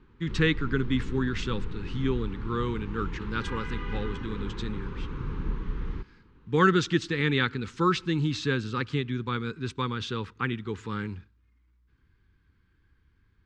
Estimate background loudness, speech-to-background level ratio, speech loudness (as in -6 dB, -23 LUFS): -37.5 LUFS, 8.0 dB, -29.5 LUFS